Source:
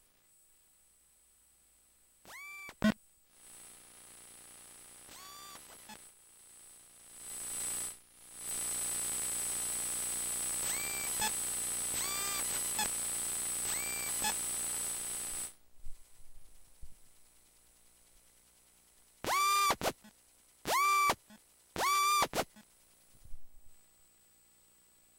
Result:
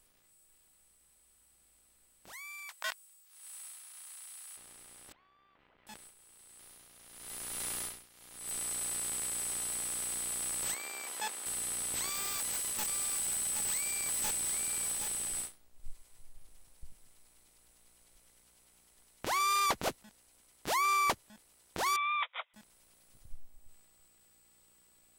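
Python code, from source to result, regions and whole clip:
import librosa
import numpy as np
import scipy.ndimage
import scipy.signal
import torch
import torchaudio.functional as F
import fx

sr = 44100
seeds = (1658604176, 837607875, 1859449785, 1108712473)

y = fx.chain(x, sr, fx.highpass(hz=850.0, slope=24),
    fx.high_shelf(hz=4700.0, db=7.5), at=(2.33, 4.57))
y = fx.chain(y, sr, fx.lowpass(hz=2800.0, slope=24),
    fx.level_steps(step_db=17), at=(5.12, 5.87))
y = fx.spec_clip(y, sr, under_db=15, at=(6.58, 8.36), fade=0.02)
y = fx.sustainer(y, sr, db_per_s=110.0, at=(6.58, 8.36), fade=0.02)
y = fx.chain(y, sr, fx.highpass(hz=370.0, slope=12),
    fx.high_shelf(hz=3400.0, db=-7.0), at=(10.74, 11.46))
y = fx.chain(y, sr, fx.overflow_wrap(gain_db=27.5),
    fx.echo_single(ms=773, db=-6.5), at=(12.1, 15.41))
y = fx.chain(y, sr, fx.lower_of_two(delay_ms=0.91),
    fx.brickwall_bandpass(low_hz=490.0, high_hz=3900.0),
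    fx.peak_eq(hz=800.0, db=-9.5, octaves=0.64), at=(21.96, 22.54))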